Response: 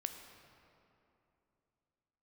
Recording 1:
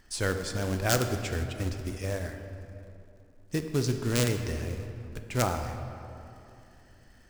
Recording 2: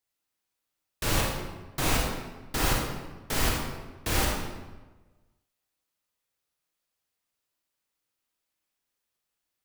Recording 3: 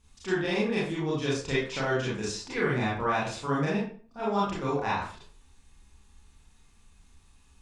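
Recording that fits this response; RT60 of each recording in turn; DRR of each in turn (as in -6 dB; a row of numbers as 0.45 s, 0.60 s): 1; 2.9 s, 1.2 s, 0.45 s; 6.0 dB, -2.5 dB, -7.5 dB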